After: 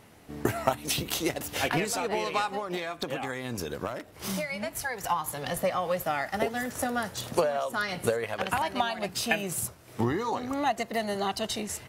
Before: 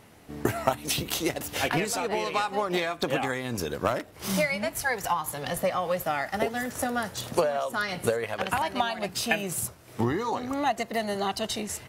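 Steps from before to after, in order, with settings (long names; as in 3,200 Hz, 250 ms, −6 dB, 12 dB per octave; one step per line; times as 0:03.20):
0:02.54–0:05.09: downward compressor, threshold −28 dBFS, peak gain reduction 8.5 dB
level −1 dB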